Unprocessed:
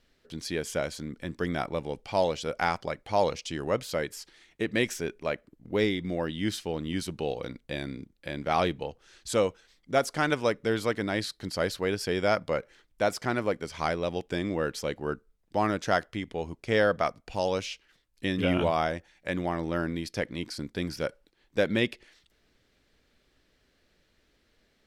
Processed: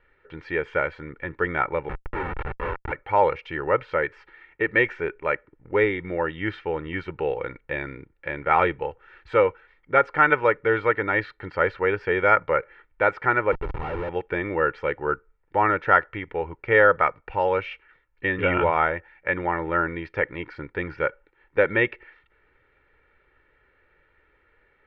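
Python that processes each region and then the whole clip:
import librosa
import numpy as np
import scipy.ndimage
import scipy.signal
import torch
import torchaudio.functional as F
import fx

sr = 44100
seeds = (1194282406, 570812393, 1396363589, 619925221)

y = fx.chain(x, sr, fx.ring_mod(carrier_hz=270.0),
    fx.schmitt(flips_db=-32.5),
    fx.air_absorb(metres=56.0), at=(1.89, 2.92))
y = fx.chain(y, sr, fx.schmitt(flips_db=-36.0),
    fx.peak_eq(hz=1700.0, db=-9.5, octaves=1.5), at=(13.52, 14.09))
y = scipy.signal.sosfilt(scipy.signal.cheby1(3, 1.0, 2300.0, 'lowpass', fs=sr, output='sos'), y)
y = fx.peak_eq(y, sr, hz=1400.0, db=11.0, octaves=1.9)
y = y + 0.66 * np.pad(y, (int(2.2 * sr / 1000.0), 0))[:len(y)]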